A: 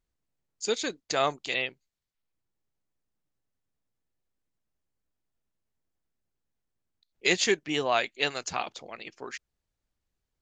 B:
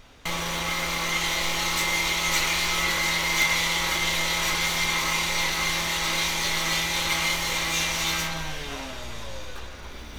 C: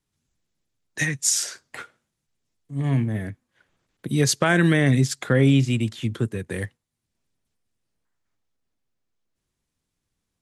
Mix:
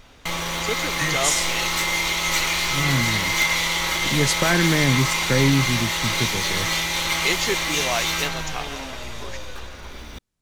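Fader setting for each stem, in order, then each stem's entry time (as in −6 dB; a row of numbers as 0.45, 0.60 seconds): −0.5, +2.0, −1.5 decibels; 0.00, 0.00, 0.00 seconds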